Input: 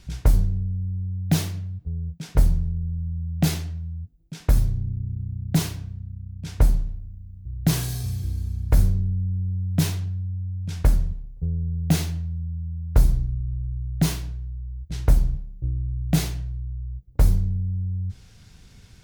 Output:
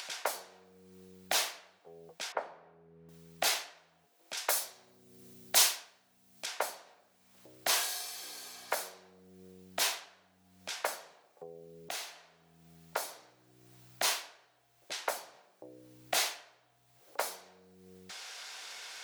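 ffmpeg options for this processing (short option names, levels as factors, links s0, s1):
-filter_complex "[0:a]asettb=1/sr,asplit=3[s0][s1][s2];[s0]atrim=end=2.324[s3];[s1]atrim=start=2.32:end=3.09,asetpts=PTS-STARTPTS,afade=t=in:d=0.004:c=qsin,afade=t=out:st=0.766:d=0.004:c=qsin,lowpass=1500[s4];[s2]atrim=start=3.086[s5];[s3][s4]acrossfade=d=0.004:c1=hsin:c2=qsin[s6];[s6][s5]acrossfade=d=0.004:c1=qsin:c2=hsin,asettb=1/sr,asplit=3[s7][s8][s9];[s7]atrim=end=4.374[s10];[s8]atrim=start=4.37:end=6.46,asetpts=PTS-STARTPTS,afade=t=in:d=0.004:c=qsin,afade=t=out:st=2.086:d=0.004:c=qsin,highshelf=f=3800:g=10[s11];[s9]atrim=start=6.456[s12];[s10][s11]acrossfade=d=0.004:c1=hsin:c2=qsin[s13];[s13][s12]acrossfade=d=0.004:c1=qsin:c2=hsin,asplit=2[s14][s15];[s14]atrim=end=11.89,asetpts=PTS-STARTPTS,afade=t=out:st=11.886:d=0.004:c=hsin:silence=0.237137[s16];[s15]atrim=start=11.89,asetpts=PTS-STARTPTS,afade=t=in:d=1.81:c=qsin:silence=0.237137[s17];[s16][s17]concat=n=2:v=0:a=1,highpass=f=620:w=0.5412,highpass=f=620:w=1.3066,highshelf=f=8500:g=-6,acompressor=mode=upward:threshold=0.0126:ratio=2.5,volume=1.41"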